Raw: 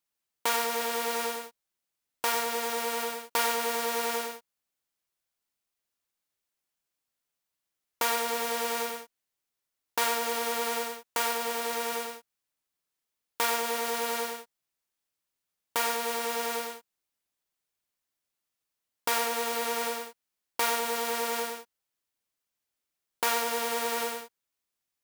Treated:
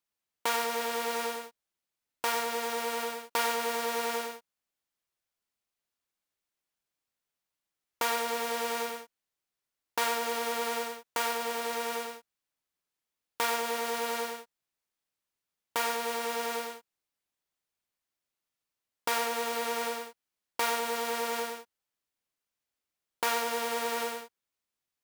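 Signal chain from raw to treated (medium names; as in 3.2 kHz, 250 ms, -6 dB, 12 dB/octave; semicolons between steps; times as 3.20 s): treble shelf 6 kHz -4.5 dB; trim -1 dB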